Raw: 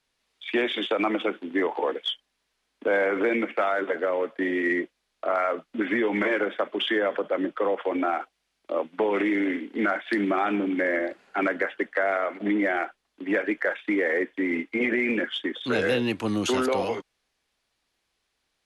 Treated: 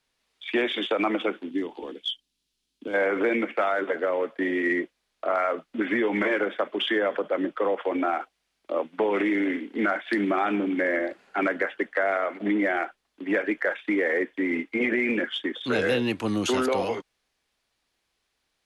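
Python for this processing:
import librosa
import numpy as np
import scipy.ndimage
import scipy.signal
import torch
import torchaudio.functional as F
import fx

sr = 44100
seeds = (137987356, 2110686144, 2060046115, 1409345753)

y = fx.band_shelf(x, sr, hz=1000.0, db=-14.5, octaves=2.6, at=(1.49, 2.93), fade=0.02)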